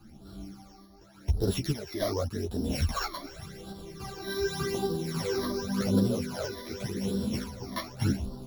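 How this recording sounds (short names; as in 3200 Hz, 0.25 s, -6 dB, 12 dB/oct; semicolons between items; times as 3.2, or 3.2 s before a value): a buzz of ramps at a fixed pitch in blocks of 8 samples; phasing stages 12, 0.87 Hz, lowest notch 140–2200 Hz; random-step tremolo; a shimmering, thickened sound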